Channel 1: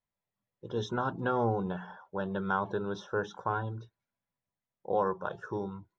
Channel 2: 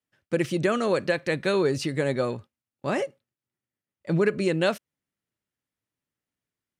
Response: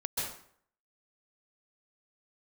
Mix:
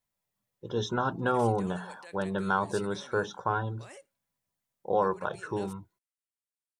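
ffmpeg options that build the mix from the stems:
-filter_complex "[0:a]highshelf=frequency=4700:gain=7.5,volume=2.5dB[link_01];[1:a]alimiter=limit=-21.5dB:level=0:latency=1:release=24,highpass=frequency=860:poles=1,equalizer=frequency=8800:width=1.3:gain=14,adelay=950,volume=-15.5dB[link_02];[link_01][link_02]amix=inputs=2:normalize=0"

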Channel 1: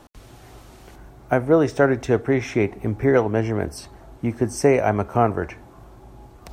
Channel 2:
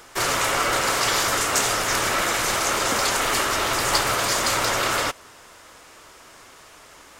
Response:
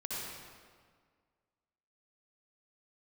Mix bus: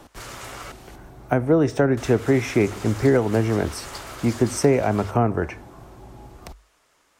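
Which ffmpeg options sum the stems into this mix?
-filter_complex "[0:a]volume=2.5dB[link_01];[1:a]volume=-16dB,asplit=3[link_02][link_03][link_04];[link_02]atrim=end=0.72,asetpts=PTS-STARTPTS,afade=type=out:start_time=0.716:duration=0.004:curve=hsin[link_05];[link_03]atrim=start=0.72:end=1.97,asetpts=PTS-STARTPTS,volume=0[link_06];[link_04]atrim=start=1.97,asetpts=PTS-STARTPTS,afade=type=in:duration=0.004:curve=hsin[link_07];[link_05][link_06][link_07]concat=n=3:v=0:a=1[link_08];[link_01][link_08]amix=inputs=2:normalize=0,bandreject=frequency=50:width_type=h:width=6,bandreject=frequency=100:width_type=h:width=6,acrossover=split=330[link_09][link_10];[link_10]acompressor=threshold=-20dB:ratio=5[link_11];[link_09][link_11]amix=inputs=2:normalize=0"

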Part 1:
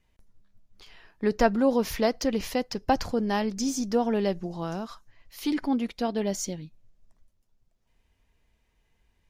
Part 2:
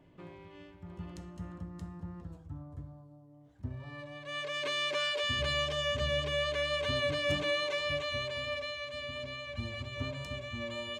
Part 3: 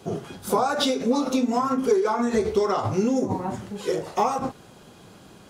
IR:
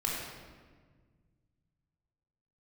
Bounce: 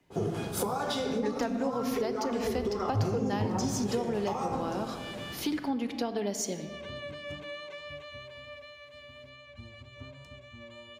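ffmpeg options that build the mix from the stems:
-filter_complex "[0:a]highpass=220,volume=1dB,asplit=3[link_01][link_02][link_03];[link_02]volume=-14dB[link_04];[1:a]adynamicequalizer=threshold=0.00562:dfrequency=3400:dqfactor=0.7:tfrequency=3400:tqfactor=0.7:attack=5:release=100:ratio=0.375:range=2.5:mode=cutabove:tftype=highshelf,volume=-9dB[link_05];[2:a]acompressor=threshold=-23dB:ratio=6,adynamicequalizer=threshold=0.01:dfrequency=2100:dqfactor=0.7:tfrequency=2100:tqfactor=0.7:attack=5:release=100:ratio=0.375:range=1.5:mode=cutabove:tftype=highshelf,adelay=100,volume=-2.5dB,asplit=2[link_06][link_07];[link_07]volume=-5dB[link_08];[link_03]apad=whole_len=484843[link_09];[link_05][link_09]sidechaincompress=threshold=-51dB:ratio=8:attack=16:release=151[link_10];[3:a]atrim=start_sample=2205[link_11];[link_04][link_08]amix=inputs=2:normalize=0[link_12];[link_12][link_11]afir=irnorm=-1:irlink=0[link_13];[link_01][link_10][link_06][link_13]amix=inputs=4:normalize=0,acrossover=split=140[link_14][link_15];[link_15]acompressor=threshold=-28dB:ratio=10[link_16];[link_14][link_16]amix=inputs=2:normalize=0"

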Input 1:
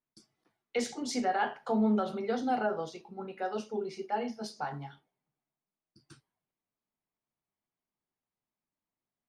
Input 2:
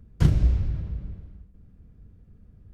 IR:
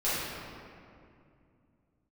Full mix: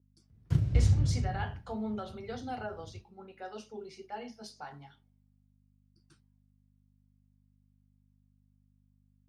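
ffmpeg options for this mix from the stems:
-filter_complex "[0:a]aeval=exprs='val(0)+0.002*(sin(2*PI*50*n/s)+sin(2*PI*2*50*n/s)/2+sin(2*PI*3*50*n/s)/3+sin(2*PI*4*50*n/s)/4+sin(2*PI*5*50*n/s)/5)':channel_layout=same,adynamicequalizer=threshold=0.00447:dfrequency=1800:dqfactor=0.7:tfrequency=1800:tqfactor=0.7:attack=5:release=100:ratio=0.375:range=3:mode=boostabove:tftype=highshelf,volume=-9dB,asplit=2[link_01][link_02];[1:a]equalizer=frequency=110:width_type=o:width=0.77:gain=10,adelay=300,volume=-1.5dB[link_03];[link_02]apad=whole_len=133761[link_04];[link_03][link_04]sidechaingate=range=-11dB:threshold=-52dB:ratio=16:detection=peak[link_05];[link_01][link_05]amix=inputs=2:normalize=0,highpass=69"

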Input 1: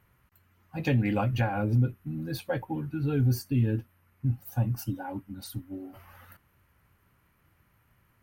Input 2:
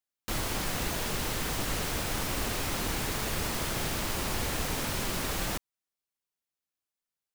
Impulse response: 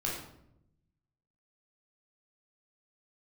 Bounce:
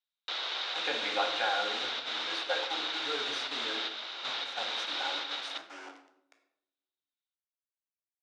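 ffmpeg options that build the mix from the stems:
-filter_complex "[0:a]acrusher=bits=6:mix=0:aa=0.000001,volume=-4.5dB,asplit=3[link_01][link_02][link_03];[link_02]volume=-3.5dB[link_04];[1:a]lowpass=frequency=3800:width_type=q:width=9.8,volume=-6dB,asplit=2[link_05][link_06];[link_06]volume=-16dB[link_07];[link_03]apad=whole_len=323986[link_08];[link_05][link_08]sidechaingate=range=-7dB:threshold=-44dB:ratio=16:detection=peak[link_09];[2:a]atrim=start_sample=2205[link_10];[link_04][link_07]amix=inputs=2:normalize=0[link_11];[link_11][link_10]afir=irnorm=-1:irlink=0[link_12];[link_01][link_09][link_12]amix=inputs=3:normalize=0,highpass=frequency=480:width=0.5412,highpass=frequency=480:width=1.3066,equalizer=frequency=590:width_type=q:width=4:gain=-3,equalizer=frequency=1400:width_type=q:width=4:gain=4,equalizer=frequency=4100:width_type=q:width=4:gain=-5,lowpass=frequency=6200:width=0.5412,lowpass=frequency=6200:width=1.3066"

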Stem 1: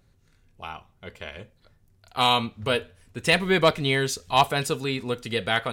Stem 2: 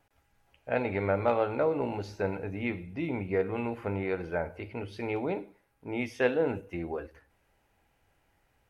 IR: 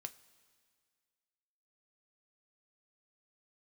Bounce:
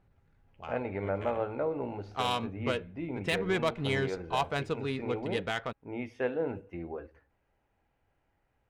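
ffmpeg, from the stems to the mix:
-filter_complex "[0:a]adynamicsmooth=sensitivity=1:basefreq=1800,volume=-5dB[link_01];[1:a]lowpass=frequency=1700:poles=1,volume=-4dB[link_02];[link_01][link_02]amix=inputs=2:normalize=0,alimiter=limit=-19dB:level=0:latency=1:release=153"

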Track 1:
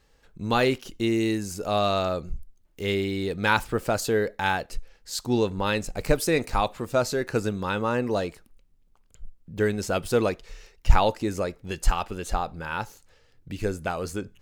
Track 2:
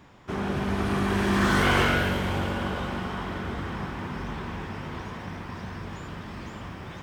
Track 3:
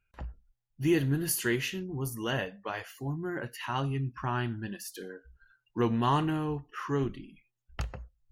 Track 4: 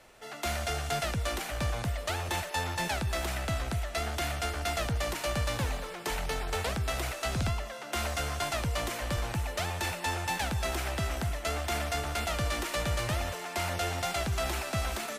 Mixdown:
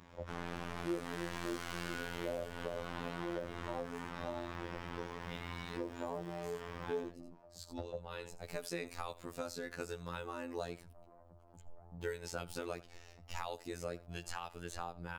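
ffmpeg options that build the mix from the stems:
ffmpeg -i stem1.wav -i stem2.wav -i stem3.wav -i stem4.wav -filter_complex "[0:a]adelay=2450,volume=-5.5dB,asplit=2[link_01][link_02];[link_02]volume=-22.5dB[link_03];[1:a]aeval=exprs='(tanh(31.6*val(0)+0.35)-tanh(0.35))/31.6':channel_layout=same,volume=-2dB,asplit=2[link_04][link_05];[link_05]volume=-7dB[link_06];[2:a]lowpass=frequency=550:width_type=q:width=6.8,volume=-0.5dB,asplit=2[link_07][link_08];[3:a]lowpass=frequency=1000:width=0.5412,lowpass=frequency=1000:width=1.3066,alimiter=level_in=10dB:limit=-24dB:level=0:latency=1:release=80,volume=-10dB,adelay=2200,volume=-16dB[link_09];[link_08]apad=whole_len=743689[link_10];[link_01][link_10]sidechaincompress=threshold=-42dB:ratio=8:attack=9.4:release=958[link_11];[link_03][link_06]amix=inputs=2:normalize=0,aecho=0:1:81:1[link_12];[link_11][link_04][link_07][link_09][link_12]amix=inputs=5:normalize=0,acrossover=split=540|6400[link_13][link_14][link_15];[link_13]acompressor=threshold=-41dB:ratio=4[link_16];[link_14]acompressor=threshold=-39dB:ratio=4[link_17];[link_15]acompressor=threshold=-51dB:ratio=4[link_18];[link_16][link_17][link_18]amix=inputs=3:normalize=0,afftfilt=real='hypot(re,im)*cos(PI*b)':imag='0':win_size=2048:overlap=0.75" out.wav

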